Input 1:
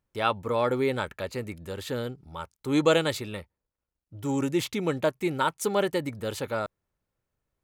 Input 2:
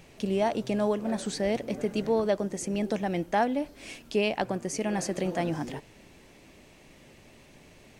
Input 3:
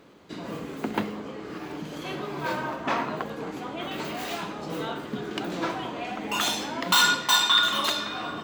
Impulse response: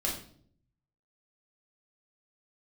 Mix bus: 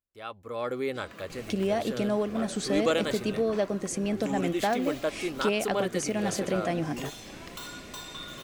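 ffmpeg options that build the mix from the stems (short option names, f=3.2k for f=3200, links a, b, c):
-filter_complex "[0:a]equalizer=f=150:t=o:w=0.71:g=-9,volume=-15dB[a];[1:a]acompressor=threshold=-48dB:ratio=1.5,adelay=1300,volume=-3dB[b];[2:a]acrossover=split=1000|4800[c][d][e];[c]acompressor=threshold=-43dB:ratio=4[f];[d]acompressor=threshold=-42dB:ratio=4[g];[e]acompressor=threshold=-39dB:ratio=4[h];[f][g][h]amix=inputs=3:normalize=0,adelay=650,volume=-18.5dB[i];[a][b][i]amix=inputs=3:normalize=0,dynaudnorm=f=100:g=11:m=11dB,asuperstop=centerf=900:order=4:qfactor=7.9"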